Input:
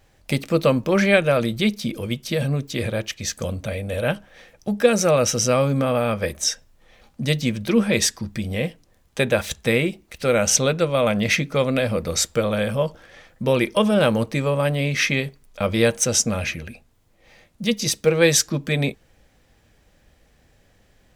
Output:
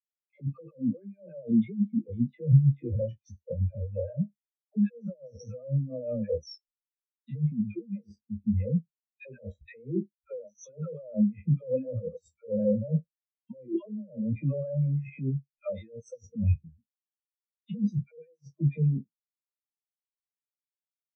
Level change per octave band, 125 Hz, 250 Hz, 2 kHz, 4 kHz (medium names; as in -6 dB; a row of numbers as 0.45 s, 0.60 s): -3.0 dB, -6.5 dB, -32.5 dB, under -30 dB